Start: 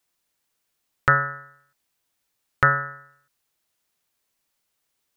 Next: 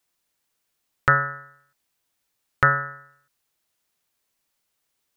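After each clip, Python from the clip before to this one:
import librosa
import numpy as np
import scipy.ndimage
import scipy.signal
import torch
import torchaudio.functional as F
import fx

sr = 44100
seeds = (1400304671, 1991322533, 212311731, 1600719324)

y = x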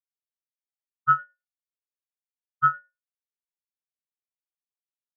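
y = fx.sample_hold(x, sr, seeds[0], rate_hz=4400.0, jitter_pct=20)
y = fx.echo_feedback(y, sr, ms=106, feedback_pct=43, wet_db=-11.0)
y = fx.spectral_expand(y, sr, expansion=4.0)
y = y * 10.0 ** (-5.5 / 20.0)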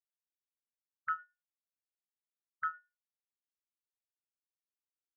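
y = fx.octave_divider(x, sr, octaves=2, level_db=-6.0)
y = fx.auto_wah(y, sr, base_hz=320.0, top_hz=2100.0, q=2.5, full_db=-27.0, direction='up')
y = y * 10.0 ** (-7.0 / 20.0)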